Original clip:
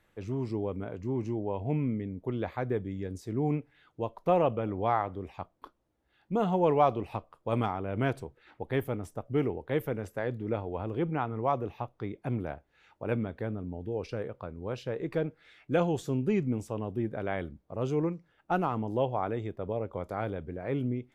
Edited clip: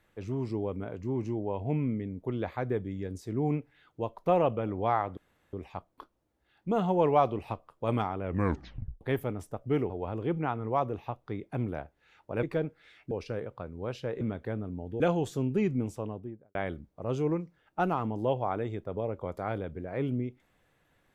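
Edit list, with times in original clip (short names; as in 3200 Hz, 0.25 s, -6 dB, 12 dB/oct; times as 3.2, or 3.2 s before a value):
5.17 insert room tone 0.36 s
7.87 tape stop 0.78 s
9.54–10.62 cut
13.15–13.94 swap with 15.04–15.72
16.6–17.27 studio fade out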